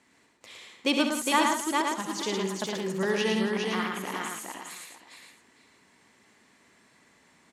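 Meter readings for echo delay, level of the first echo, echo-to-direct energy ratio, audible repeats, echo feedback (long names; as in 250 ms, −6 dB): 68 ms, −9.0 dB, 1.5 dB, 10, repeats not evenly spaced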